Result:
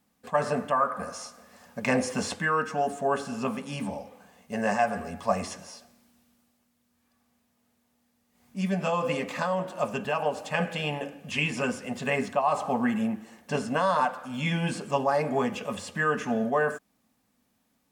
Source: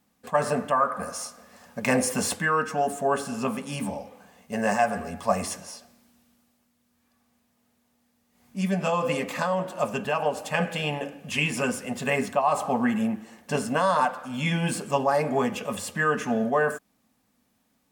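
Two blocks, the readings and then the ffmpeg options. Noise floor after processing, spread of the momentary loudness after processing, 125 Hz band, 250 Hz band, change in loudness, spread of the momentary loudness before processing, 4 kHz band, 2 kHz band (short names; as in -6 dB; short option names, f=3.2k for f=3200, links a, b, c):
-72 dBFS, 10 LU, -2.0 dB, -2.0 dB, -2.0 dB, 10 LU, -2.5 dB, -2.0 dB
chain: -filter_complex "[0:a]acrossover=split=7400[a][b];[b]acompressor=threshold=-55dB:ratio=4:attack=1:release=60[c];[a][c]amix=inputs=2:normalize=0,volume=-2dB"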